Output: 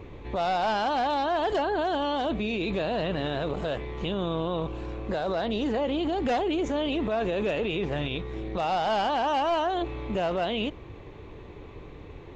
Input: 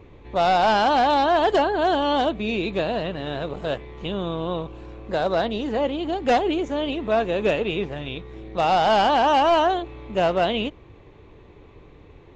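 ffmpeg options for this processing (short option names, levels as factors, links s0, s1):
-af "alimiter=level_in=1.12:limit=0.0631:level=0:latency=1:release=26,volume=0.891,volume=1.58"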